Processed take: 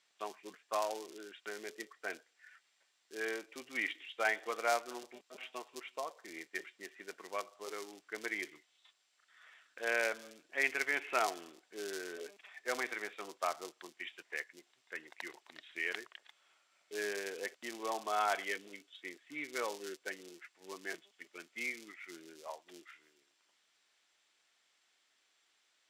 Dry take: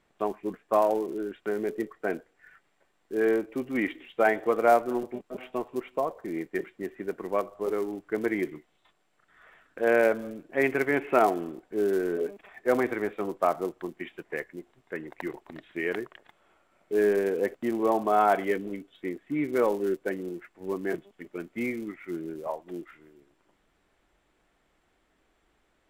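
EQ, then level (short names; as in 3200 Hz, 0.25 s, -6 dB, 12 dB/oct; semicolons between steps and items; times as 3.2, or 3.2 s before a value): band-pass 5200 Hz, Q 1.4; +8.0 dB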